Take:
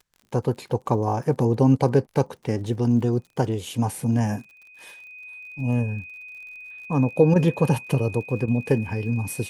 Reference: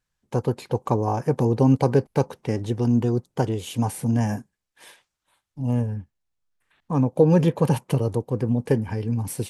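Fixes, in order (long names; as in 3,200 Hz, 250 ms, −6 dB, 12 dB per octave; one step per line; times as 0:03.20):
click removal
notch filter 2,500 Hz, Q 30
repair the gap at 0:02.06/0:07.34/0:08.46, 16 ms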